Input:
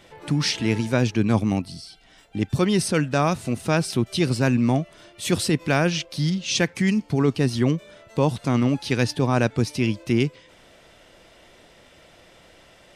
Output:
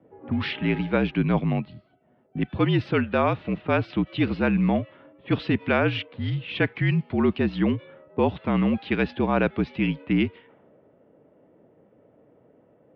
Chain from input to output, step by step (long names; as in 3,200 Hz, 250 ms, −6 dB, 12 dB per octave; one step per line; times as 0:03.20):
single-sideband voice off tune −51 Hz 180–3,400 Hz
low-pass that shuts in the quiet parts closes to 470 Hz, open at −20 dBFS